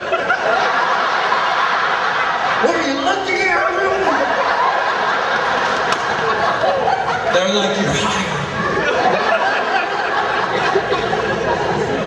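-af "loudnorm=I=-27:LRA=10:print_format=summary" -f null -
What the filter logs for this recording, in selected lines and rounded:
Input Integrated:    -16.5 LUFS
Input True Peak:      -1.4 dBTP
Input LRA:             1.3 LU
Input Threshold:     -26.5 LUFS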